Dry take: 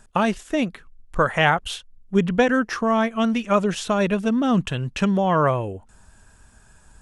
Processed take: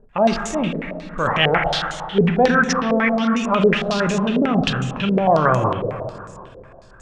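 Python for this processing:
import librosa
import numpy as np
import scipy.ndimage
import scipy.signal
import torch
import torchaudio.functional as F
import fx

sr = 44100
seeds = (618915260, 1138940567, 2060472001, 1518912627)

y = fx.transient(x, sr, attack_db=-5, sustain_db=9)
y = fx.rev_plate(y, sr, seeds[0], rt60_s=2.5, hf_ratio=0.8, predelay_ms=0, drr_db=4.0)
y = fx.filter_held_lowpass(y, sr, hz=11.0, low_hz=470.0, high_hz=6800.0)
y = y * 10.0 ** (-1.0 / 20.0)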